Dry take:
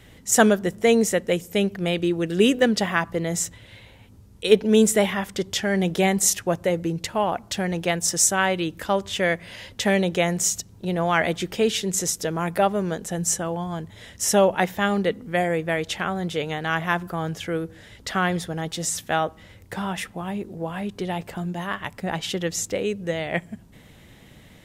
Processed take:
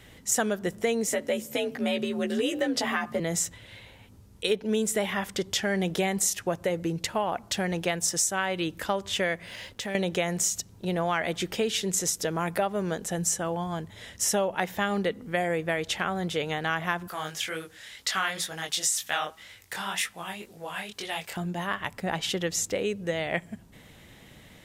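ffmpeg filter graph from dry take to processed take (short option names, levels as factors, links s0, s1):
-filter_complex "[0:a]asettb=1/sr,asplit=3[s0][s1][s2];[s0]atrim=end=1.074[s3];[s1]atrim=start=1.07:end=3.2,asetpts=PTS-STARTPTS,afade=t=in:d=0.004:c=qsin,afade=t=out:st=2.126:d=0.004:c=qsin,acompressor=threshold=0.0891:ratio=2.5:attack=3.2:release=140:knee=1:detection=peak,afreqshift=49,asplit=2[s4][s5];[s5]adelay=14,volume=0.668[s6];[s4][s6]amix=inputs=2:normalize=0,atrim=end_sample=93933[s7];[s2]atrim=start=3.196[s8];[s3][s7]acrossfade=d=0.004:c1=hsin:c2=qsin[s9];[s9][s8]acrossfade=d=0.004:c1=qsin:c2=hsin,asettb=1/sr,asplit=3[s10][s11][s12];[s10]atrim=end=9.464[s13];[s11]atrim=start=9.46:end=9.95,asetpts=PTS-STARTPTS,afade=t=in:d=0.004:c=qsin,afade=t=out:st=0.486:d=0.004:c=qsin,acompressor=threshold=0.0224:ratio=2.5:attack=3.2:release=140:knee=1:detection=peak,aeval=exprs='sgn(val(0))*max(abs(val(0))-0.00141,0)':c=same[s14];[s12]atrim=start=9.946[s15];[s13][s14]acrossfade=d=0.004:c1=hsin:c2=qsin[s16];[s16][s15]acrossfade=d=0.004:c1=qsin:c2=hsin,asettb=1/sr,asplit=3[s17][s18][s19];[s17]atrim=end=17.084[s20];[s18]atrim=start=17.08:end=21.37,asetpts=PTS-STARTPTS,afade=t=in:d=0.004:c=qsin,afade=t=out:st=4.286:d=0.004:c=qsin,tiltshelf=f=940:g=-9.5,flanger=delay=19:depth=7.5:speed=2[s21];[s19]atrim=start=21.366[s22];[s20][s21]acrossfade=d=0.004:c1=hsin:c2=qsin[s23];[s23][s22]acrossfade=d=0.004:c1=qsin:c2=hsin,lowshelf=f=410:g=-4,acompressor=threshold=0.0708:ratio=6"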